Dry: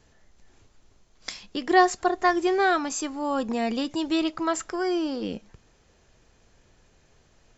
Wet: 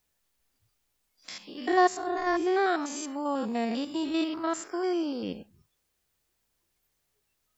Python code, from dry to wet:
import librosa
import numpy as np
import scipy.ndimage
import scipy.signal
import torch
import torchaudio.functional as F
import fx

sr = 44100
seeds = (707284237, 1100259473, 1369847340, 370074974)

y = fx.spec_steps(x, sr, hold_ms=100)
y = fx.dmg_noise_colour(y, sr, seeds[0], colour='white', level_db=-55.0)
y = fx.noise_reduce_blind(y, sr, reduce_db=21)
y = y * librosa.db_to_amplitude(-2.0)